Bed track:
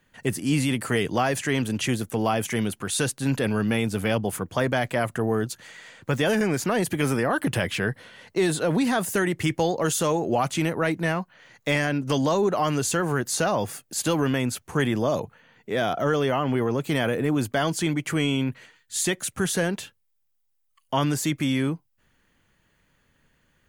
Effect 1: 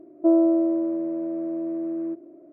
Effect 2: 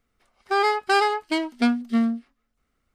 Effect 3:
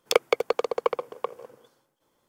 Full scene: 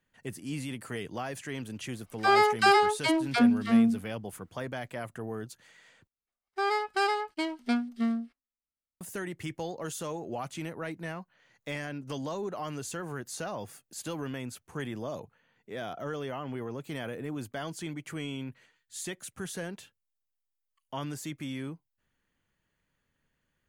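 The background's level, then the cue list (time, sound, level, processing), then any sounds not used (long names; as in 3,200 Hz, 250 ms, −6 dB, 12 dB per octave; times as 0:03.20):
bed track −13 dB
0:01.72: mix in 2 −1 dB + all-pass dispersion lows, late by 97 ms, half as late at 390 Hz
0:06.07: overwrite with 2 −7.5 dB + noise gate −53 dBFS, range −23 dB
not used: 1, 3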